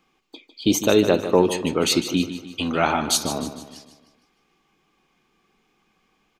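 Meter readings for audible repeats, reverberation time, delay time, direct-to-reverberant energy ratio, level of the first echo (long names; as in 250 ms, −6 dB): 4, no reverb audible, 152 ms, no reverb audible, −11.5 dB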